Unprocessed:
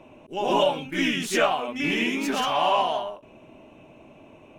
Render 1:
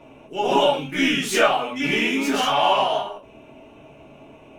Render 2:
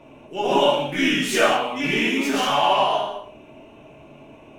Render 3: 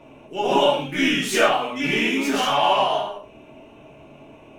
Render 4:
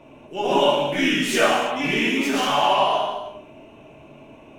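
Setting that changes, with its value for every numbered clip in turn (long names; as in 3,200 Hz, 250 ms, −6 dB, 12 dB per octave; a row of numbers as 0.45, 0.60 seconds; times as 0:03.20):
reverb whose tail is shaped and stops, gate: 90, 240, 150, 370 milliseconds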